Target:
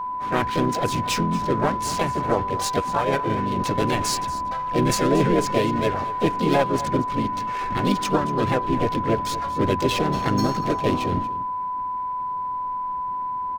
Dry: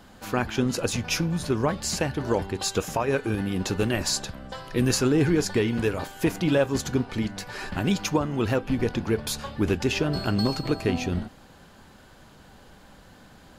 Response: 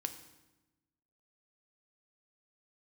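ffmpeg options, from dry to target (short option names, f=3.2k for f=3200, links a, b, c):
-filter_complex "[0:a]aeval=exprs='0.282*(cos(1*acos(clip(val(0)/0.282,-1,1)))-cos(1*PI/2))+0.0316*(cos(2*acos(clip(val(0)/0.282,-1,1)))-cos(2*PI/2))+0.00794*(cos(3*acos(clip(val(0)/0.282,-1,1)))-cos(3*PI/2))+0.00631*(cos(4*acos(clip(val(0)/0.282,-1,1)))-cos(4*PI/2))':c=same,adynamicsmooth=sensitivity=7:basefreq=1.4k,asplit=3[a][b][c];[b]asetrate=55563,aresample=44100,atempo=0.793701,volume=-3dB[d];[c]asetrate=66075,aresample=44100,atempo=0.66742,volume=-6dB[e];[a][d][e]amix=inputs=3:normalize=0,aeval=exprs='val(0)+0.0501*sin(2*PI*1000*n/s)':c=same,asplit=2[f][g];[g]aecho=0:1:234:0.158[h];[f][h]amix=inputs=2:normalize=0"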